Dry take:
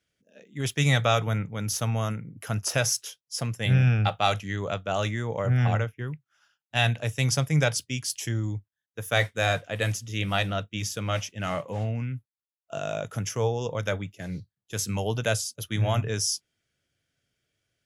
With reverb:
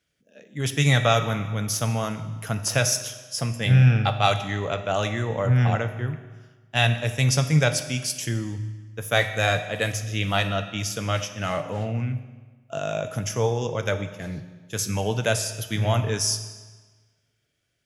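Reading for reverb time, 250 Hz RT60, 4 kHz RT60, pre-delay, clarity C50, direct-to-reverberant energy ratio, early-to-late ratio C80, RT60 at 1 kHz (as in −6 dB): 1.4 s, 1.4 s, 1.3 s, 8 ms, 10.0 dB, 8.0 dB, 11.5 dB, 1.4 s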